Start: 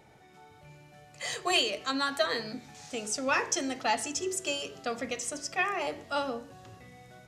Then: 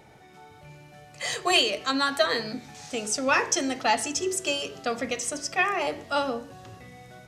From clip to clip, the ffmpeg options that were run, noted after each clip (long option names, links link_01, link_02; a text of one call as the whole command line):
ffmpeg -i in.wav -af "bandreject=frequency=7100:width=28,volume=5dB" out.wav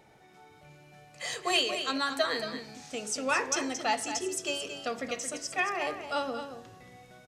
ffmpeg -i in.wav -filter_complex "[0:a]equalizer=frequency=86:width=0.85:gain=-4.5,asplit=2[link_01][link_02];[link_02]aecho=0:1:225:0.355[link_03];[link_01][link_03]amix=inputs=2:normalize=0,volume=-5.5dB" out.wav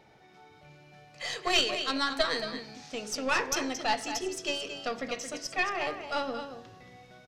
ffmpeg -i in.wav -af "highshelf=frequency=6500:width_type=q:width=1.5:gain=-7,aeval=exprs='0.237*(cos(1*acos(clip(val(0)/0.237,-1,1)))-cos(1*PI/2))+0.0841*(cos(2*acos(clip(val(0)/0.237,-1,1)))-cos(2*PI/2))+0.00668*(cos(6*acos(clip(val(0)/0.237,-1,1)))-cos(6*PI/2))':channel_layout=same" out.wav